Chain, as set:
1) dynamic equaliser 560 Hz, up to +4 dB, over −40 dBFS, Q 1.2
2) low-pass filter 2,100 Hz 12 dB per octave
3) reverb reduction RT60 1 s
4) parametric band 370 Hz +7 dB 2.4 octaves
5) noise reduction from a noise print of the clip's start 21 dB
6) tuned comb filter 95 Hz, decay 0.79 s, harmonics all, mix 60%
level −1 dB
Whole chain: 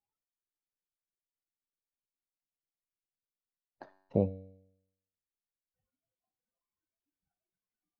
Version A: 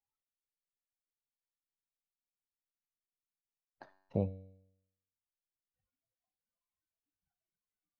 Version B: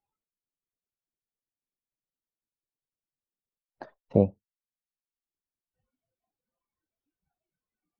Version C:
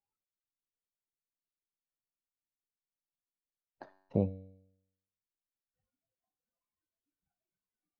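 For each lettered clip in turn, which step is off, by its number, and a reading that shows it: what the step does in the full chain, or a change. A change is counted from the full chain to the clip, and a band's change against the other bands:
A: 4, change in integrated loudness −4.5 LU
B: 6, change in momentary loudness spread −8 LU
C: 1, 500 Hz band −3.0 dB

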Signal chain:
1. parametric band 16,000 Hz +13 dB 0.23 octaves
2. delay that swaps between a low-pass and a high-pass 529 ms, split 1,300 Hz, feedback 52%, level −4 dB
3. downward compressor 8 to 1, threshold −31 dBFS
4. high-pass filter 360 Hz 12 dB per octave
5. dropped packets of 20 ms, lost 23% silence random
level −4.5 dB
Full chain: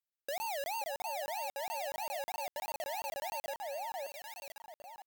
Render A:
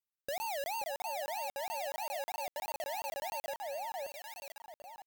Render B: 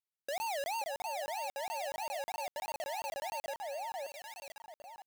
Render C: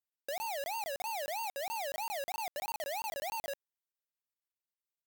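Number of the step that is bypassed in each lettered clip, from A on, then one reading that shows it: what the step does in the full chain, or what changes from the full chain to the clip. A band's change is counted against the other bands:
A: 4, change in crest factor −5.0 dB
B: 1, change in crest factor −2.0 dB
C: 2, change in momentary loudness spread −6 LU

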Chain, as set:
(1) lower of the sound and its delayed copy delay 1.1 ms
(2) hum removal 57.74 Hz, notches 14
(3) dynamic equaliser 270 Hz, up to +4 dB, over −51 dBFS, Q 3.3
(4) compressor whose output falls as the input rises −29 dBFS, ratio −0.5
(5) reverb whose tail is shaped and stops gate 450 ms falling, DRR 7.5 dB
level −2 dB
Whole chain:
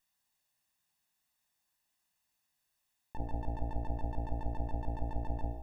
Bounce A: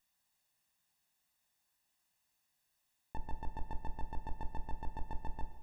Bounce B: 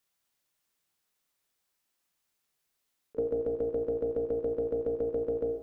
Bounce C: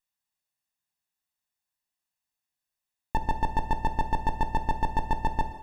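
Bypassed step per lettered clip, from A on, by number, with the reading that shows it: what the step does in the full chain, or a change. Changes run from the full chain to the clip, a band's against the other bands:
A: 2, 2 kHz band +10.0 dB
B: 1, 500 Hz band +27.0 dB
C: 4, 2 kHz band +14.0 dB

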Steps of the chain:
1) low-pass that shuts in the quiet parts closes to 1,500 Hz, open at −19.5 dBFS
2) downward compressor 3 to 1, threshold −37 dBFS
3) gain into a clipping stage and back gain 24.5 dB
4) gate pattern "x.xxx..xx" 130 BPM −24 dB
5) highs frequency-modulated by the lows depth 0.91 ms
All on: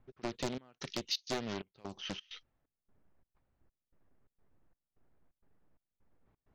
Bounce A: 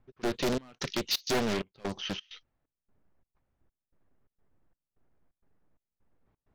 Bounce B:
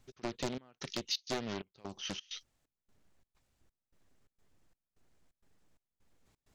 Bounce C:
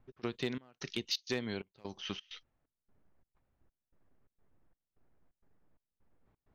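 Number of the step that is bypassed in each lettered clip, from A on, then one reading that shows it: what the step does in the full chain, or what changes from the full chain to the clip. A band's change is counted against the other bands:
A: 2, average gain reduction 10.5 dB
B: 1, 8 kHz band +2.0 dB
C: 5, 1 kHz band −6.5 dB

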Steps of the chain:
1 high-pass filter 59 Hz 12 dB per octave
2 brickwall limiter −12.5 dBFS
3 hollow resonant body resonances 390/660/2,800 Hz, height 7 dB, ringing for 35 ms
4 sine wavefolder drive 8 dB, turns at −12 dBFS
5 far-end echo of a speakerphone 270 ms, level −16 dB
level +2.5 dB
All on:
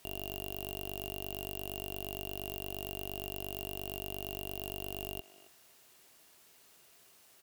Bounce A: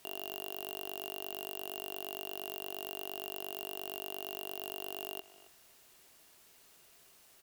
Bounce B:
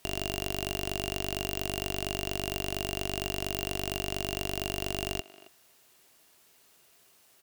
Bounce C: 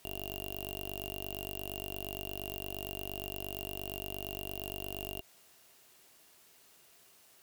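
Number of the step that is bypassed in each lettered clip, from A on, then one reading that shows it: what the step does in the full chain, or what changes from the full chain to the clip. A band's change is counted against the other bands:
1, 125 Hz band −18.0 dB
2, average gain reduction 7.0 dB
5, echo-to-direct ratio −19.5 dB to none audible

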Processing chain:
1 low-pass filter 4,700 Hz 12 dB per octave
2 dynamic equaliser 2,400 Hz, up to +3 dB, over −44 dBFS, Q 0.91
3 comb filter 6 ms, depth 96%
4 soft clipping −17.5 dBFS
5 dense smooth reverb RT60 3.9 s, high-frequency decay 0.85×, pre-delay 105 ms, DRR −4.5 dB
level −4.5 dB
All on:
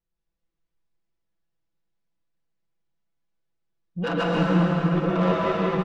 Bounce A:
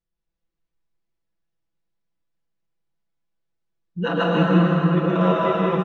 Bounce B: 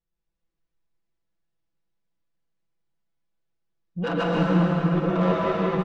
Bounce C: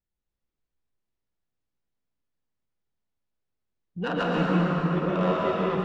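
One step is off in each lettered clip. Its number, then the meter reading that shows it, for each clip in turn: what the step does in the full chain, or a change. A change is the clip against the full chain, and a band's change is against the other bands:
4, distortion level −12 dB
2, 4 kHz band −2.0 dB
3, change in integrated loudness −2.5 LU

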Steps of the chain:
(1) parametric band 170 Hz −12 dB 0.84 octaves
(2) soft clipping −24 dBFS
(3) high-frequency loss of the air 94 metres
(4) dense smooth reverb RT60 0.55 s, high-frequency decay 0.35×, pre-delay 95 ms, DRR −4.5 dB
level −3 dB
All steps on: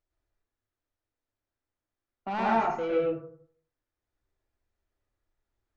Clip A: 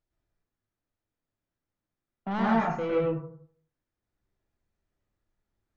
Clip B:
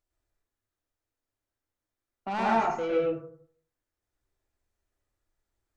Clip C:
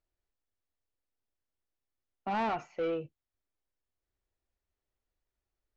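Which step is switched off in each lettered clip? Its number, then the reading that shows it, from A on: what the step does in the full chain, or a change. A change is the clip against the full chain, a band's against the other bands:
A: 1, 125 Hz band +9.0 dB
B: 3, 4 kHz band +2.0 dB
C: 4, change in crest factor −7.0 dB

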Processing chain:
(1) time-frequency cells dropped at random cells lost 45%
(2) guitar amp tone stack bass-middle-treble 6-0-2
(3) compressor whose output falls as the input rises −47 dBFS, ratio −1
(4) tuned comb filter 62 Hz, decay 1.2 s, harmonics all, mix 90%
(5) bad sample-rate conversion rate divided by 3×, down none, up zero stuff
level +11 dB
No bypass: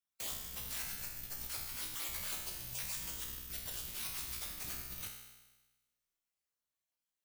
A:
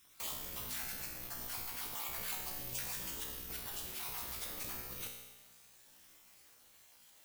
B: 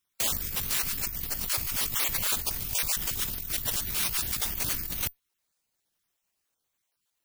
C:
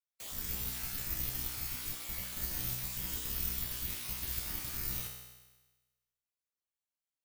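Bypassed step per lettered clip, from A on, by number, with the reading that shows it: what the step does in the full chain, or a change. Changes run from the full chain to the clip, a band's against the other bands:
2, 1 kHz band +4.5 dB
4, change in integrated loudness +12.5 LU
3, 125 Hz band +7.5 dB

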